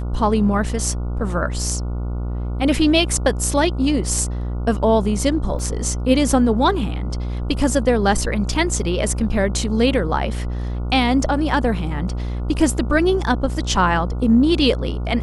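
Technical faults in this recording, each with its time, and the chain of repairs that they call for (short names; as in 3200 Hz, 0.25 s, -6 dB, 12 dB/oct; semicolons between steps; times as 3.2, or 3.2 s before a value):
buzz 60 Hz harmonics 24 -24 dBFS
5.59 gap 2.5 ms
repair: de-hum 60 Hz, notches 24; interpolate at 5.59, 2.5 ms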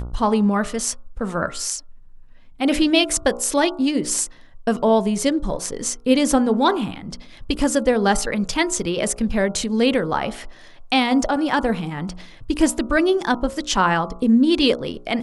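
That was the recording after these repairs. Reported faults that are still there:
none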